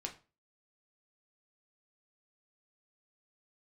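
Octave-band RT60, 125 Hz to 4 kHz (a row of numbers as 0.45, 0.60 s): 0.40, 0.35, 0.35, 0.30, 0.30, 0.25 s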